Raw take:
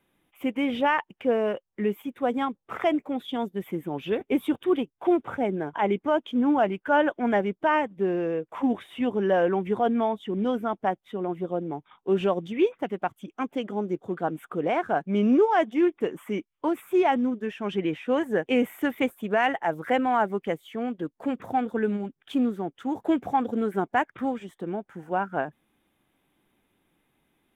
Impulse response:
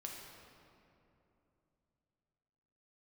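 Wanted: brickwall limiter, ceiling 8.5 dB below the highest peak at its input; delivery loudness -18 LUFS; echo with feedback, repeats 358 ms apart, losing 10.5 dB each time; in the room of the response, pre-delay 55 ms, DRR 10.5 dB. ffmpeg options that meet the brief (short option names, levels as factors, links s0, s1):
-filter_complex "[0:a]alimiter=limit=0.112:level=0:latency=1,aecho=1:1:358|716|1074:0.299|0.0896|0.0269,asplit=2[s0][s1];[1:a]atrim=start_sample=2205,adelay=55[s2];[s1][s2]afir=irnorm=-1:irlink=0,volume=0.398[s3];[s0][s3]amix=inputs=2:normalize=0,volume=3.55"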